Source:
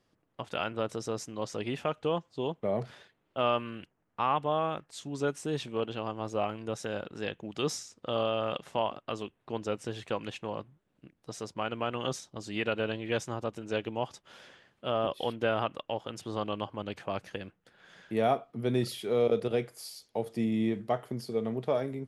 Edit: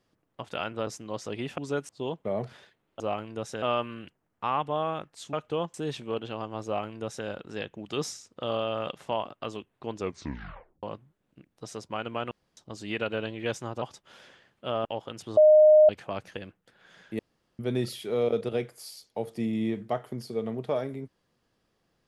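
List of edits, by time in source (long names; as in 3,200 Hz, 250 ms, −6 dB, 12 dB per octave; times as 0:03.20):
0:00.87–0:01.15: remove
0:01.86–0:02.27: swap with 0:05.09–0:05.40
0:06.31–0:06.93: duplicate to 0:03.38
0:09.63: tape stop 0.86 s
0:11.97–0:12.23: fill with room tone
0:13.48–0:14.02: remove
0:15.05–0:15.84: remove
0:16.36–0:16.88: beep over 614 Hz −12.5 dBFS
0:18.18–0:18.58: fill with room tone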